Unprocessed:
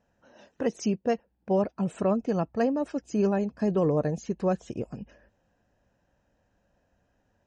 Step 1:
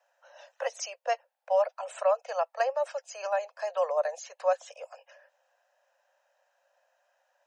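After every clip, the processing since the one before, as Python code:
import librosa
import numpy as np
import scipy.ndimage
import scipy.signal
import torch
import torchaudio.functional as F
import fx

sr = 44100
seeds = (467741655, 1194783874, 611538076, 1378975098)

y = scipy.signal.sosfilt(scipy.signal.butter(16, 530.0, 'highpass', fs=sr, output='sos'), x)
y = y * 10.0 ** (3.5 / 20.0)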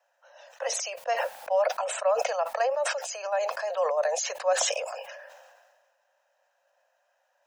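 y = fx.sustainer(x, sr, db_per_s=35.0)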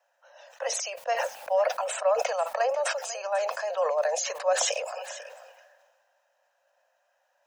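y = x + 10.0 ** (-15.5 / 20.0) * np.pad(x, (int(494 * sr / 1000.0), 0))[:len(x)]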